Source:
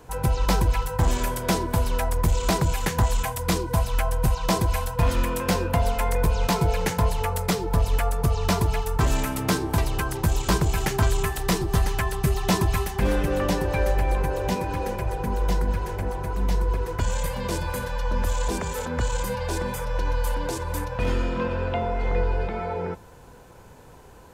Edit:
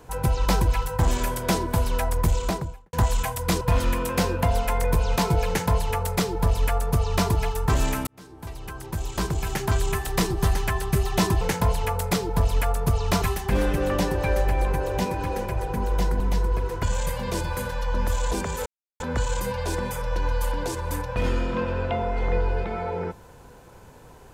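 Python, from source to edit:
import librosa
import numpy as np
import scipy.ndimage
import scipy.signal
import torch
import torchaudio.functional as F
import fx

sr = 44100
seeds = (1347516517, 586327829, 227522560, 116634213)

y = fx.studio_fade_out(x, sr, start_s=2.26, length_s=0.67)
y = fx.edit(y, sr, fx.cut(start_s=3.61, length_s=1.31),
    fx.duplicate(start_s=6.78, length_s=1.81, to_s=12.72),
    fx.fade_in_span(start_s=9.38, length_s=2.06),
    fx.cut(start_s=15.7, length_s=0.67),
    fx.insert_silence(at_s=18.83, length_s=0.34), tone=tone)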